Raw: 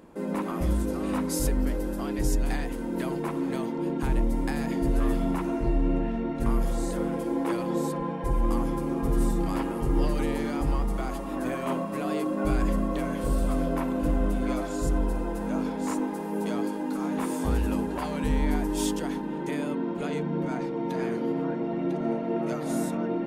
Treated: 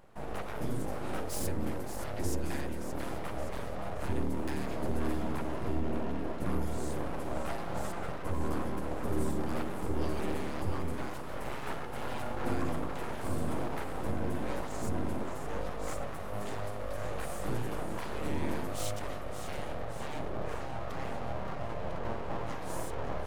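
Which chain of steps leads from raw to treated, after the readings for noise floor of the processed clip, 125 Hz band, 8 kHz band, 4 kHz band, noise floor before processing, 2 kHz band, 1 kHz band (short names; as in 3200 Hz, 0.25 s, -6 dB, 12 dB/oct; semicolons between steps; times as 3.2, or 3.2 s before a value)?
-37 dBFS, -6.0 dB, -6.0 dB, -4.0 dB, -32 dBFS, -3.5 dB, -4.5 dB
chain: split-band echo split 360 Hz, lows 0.34 s, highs 0.572 s, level -9.5 dB; full-wave rectifier; gain -5.5 dB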